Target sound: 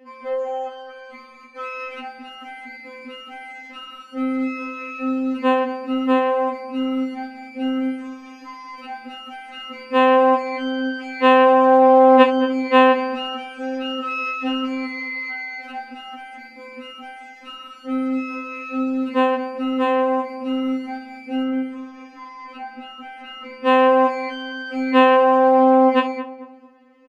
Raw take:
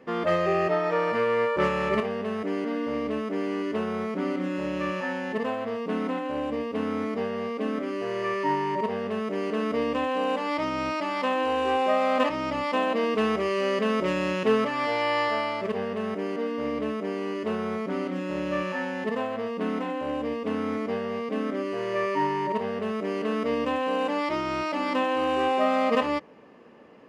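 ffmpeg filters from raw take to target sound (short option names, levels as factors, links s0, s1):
-filter_complex "[0:a]acrossover=split=4800[s0][s1];[s1]acompressor=threshold=0.00141:ratio=4:attack=1:release=60[s2];[s0][s2]amix=inputs=2:normalize=0,asettb=1/sr,asplit=3[s3][s4][s5];[s3]atrim=end=21.434[s6];[s4]atrim=start=21.43:end=23.65,asetpts=PTS-STARTPTS,afade=t=in:d=0.004:c=qsin,afade=t=out:st=2.216:d=0.004:c=qsin,highshelf=f=4500:g=-10[s7];[s5]atrim=start=23.646[s8];[s6][s7]acrossfade=d=0.004:c1=hsin:c2=qsin[s9];[s9][s8]acrossfade=d=0.004:c1=qsin:c2=hsin,dynaudnorm=f=400:g=9:m=2,asplit=2[s10][s11];[s11]adelay=222,lowpass=f=1200:p=1,volume=0.282,asplit=2[s12][s13];[s13]adelay=222,lowpass=f=1200:p=1,volume=0.38,asplit=2[s14][s15];[s15]adelay=222,lowpass=f=1200:p=1,volume=0.38,asplit=2[s16][s17];[s17]adelay=222,lowpass=f=1200:p=1,volume=0.38[s18];[s10][s12][s14][s16][s18]amix=inputs=5:normalize=0,afftfilt=real='re*3.46*eq(mod(b,12),0)':imag='im*3.46*eq(mod(b,12),0)':win_size=2048:overlap=0.75,volume=0.891"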